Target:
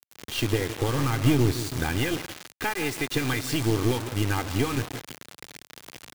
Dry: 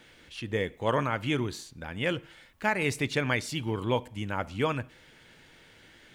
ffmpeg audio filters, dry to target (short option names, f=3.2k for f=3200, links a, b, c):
-filter_complex "[0:a]acompressor=threshold=-37dB:ratio=8,lowshelf=f=340:t=q:w=1.5:g=7.5,aecho=1:1:2.5:0.99,asettb=1/sr,asplit=3[a][b][c];[a]atrim=end=0.884[d];[b]atrim=start=0.88:end=1.65,asetpts=PTS-STARTPTS,afade=t=in:d=0.004:c=qsin,afade=t=out:st=0.766:d=0.004:c=qsin,bass=f=250:g=7,treble=f=4k:g=-5[e];[c]atrim=start=1.646[f];[d][e]acrossfade=d=0.004:c1=hsin:c2=qsin[g];[g][f]acrossfade=d=0.004:c1=qsin:c2=hsin,asettb=1/sr,asplit=3[h][i][j];[h]atrim=end=2.174[k];[i]atrim=start=2.17:end=3.15,asetpts=PTS-STARTPTS,afade=t=in:d=0.004:c=qsin,afade=t=out:st=0.976:d=0.004:c=qsin,acrossover=split=350|3000[l][m][n];[l]acompressor=threshold=-42dB:ratio=6[o];[o][m][n]amix=inputs=3:normalize=0[p];[j]atrim=start=3.146[q];[k][p]acrossfade=d=0.004:c1=hsin:c2=qsin[r];[r][q]acrossfade=d=0.004:c1=qsin:c2=hsin,aecho=1:1:168|336|504|672:0.251|0.108|0.0464|0.02,acrusher=bits=6:mix=0:aa=0.000001,highpass=100,aeval=exprs='0.112*(cos(1*acos(clip(val(0)/0.112,-1,1)))-cos(1*PI/2))+0.0112*(cos(6*acos(clip(val(0)/0.112,-1,1)))-cos(6*PI/2))':c=same,volume=8.5dB"